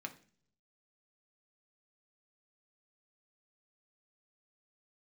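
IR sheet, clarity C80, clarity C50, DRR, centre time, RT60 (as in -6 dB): 19.0 dB, 14.5 dB, 3.5 dB, 7 ms, 0.45 s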